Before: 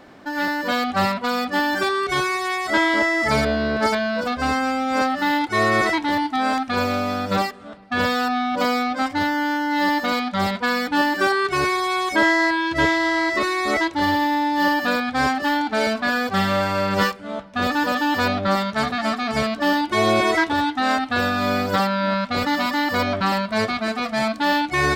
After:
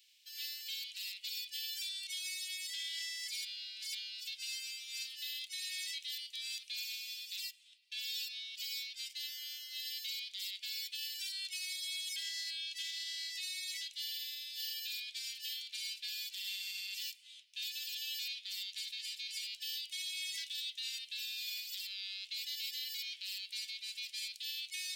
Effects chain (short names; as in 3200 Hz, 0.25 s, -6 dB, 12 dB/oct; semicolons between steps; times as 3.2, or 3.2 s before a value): steep high-pass 2600 Hz 48 dB/oct; high shelf 8200 Hz +8.5 dB; limiter -24 dBFS, peak gain reduction 8.5 dB; on a send: reverb RT60 0.70 s, pre-delay 4 ms, DRR 22.5 dB; on the sum: gain -7.5 dB